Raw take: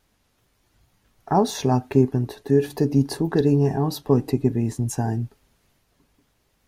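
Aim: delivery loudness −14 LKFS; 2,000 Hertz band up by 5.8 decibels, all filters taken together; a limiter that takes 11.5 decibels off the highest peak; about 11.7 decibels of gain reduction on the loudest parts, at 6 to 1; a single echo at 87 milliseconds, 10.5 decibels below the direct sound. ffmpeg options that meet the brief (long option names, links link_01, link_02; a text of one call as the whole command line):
ffmpeg -i in.wav -af "equalizer=frequency=2000:width_type=o:gain=7.5,acompressor=threshold=-25dB:ratio=6,alimiter=level_in=0.5dB:limit=-24dB:level=0:latency=1,volume=-0.5dB,aecho=1:1:87:0.299,volume=20dB" out.wav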